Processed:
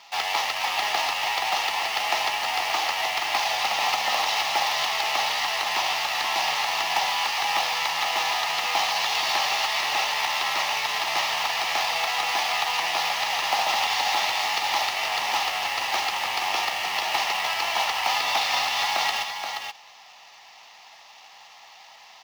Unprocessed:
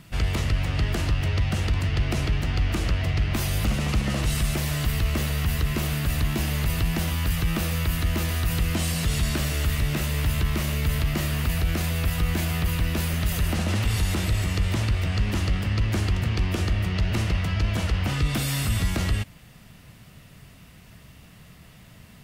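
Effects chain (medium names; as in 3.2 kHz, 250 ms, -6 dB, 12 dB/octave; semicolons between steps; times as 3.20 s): CVSD coder 32 kbps; tilt shelf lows -6 dB, about 1.4 kHz; band-stop 1.5 kHz, Q 5.2; in parallel at -6.5 dB: word length cut 6-bit, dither none; on the sum: resonant high-pass 820 Hz, resonance Q 8.6; short-mantissa float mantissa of 2-bit; on a send: delay 477 ms -6.5 dB; on the sum: trim +1 dB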